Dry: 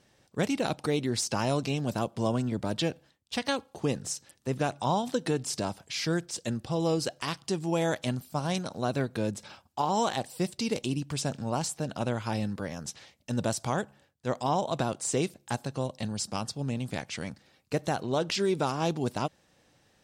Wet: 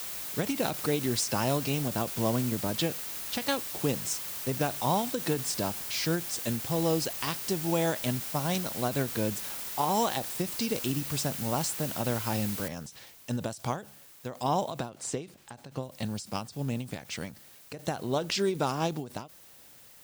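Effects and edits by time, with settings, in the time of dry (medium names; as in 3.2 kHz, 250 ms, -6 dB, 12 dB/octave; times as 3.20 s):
12.68 s: noise floor step -41 dB -57 dB
14.89–15.83 s: treble shelf 7.2 kHz -11 dB
whole clip: treble shelf 12 kHz +6 dB; endings held to a fixed fall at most 150 dB/s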